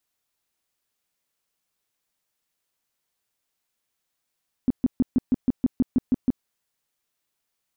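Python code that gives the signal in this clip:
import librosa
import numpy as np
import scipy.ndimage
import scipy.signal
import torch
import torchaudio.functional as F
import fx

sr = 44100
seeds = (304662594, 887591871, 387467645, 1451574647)

y = fx.tone_burst(sr, hz=253.0, cycles=6, every_s=0.16, bursts=11, level_db=-15.0)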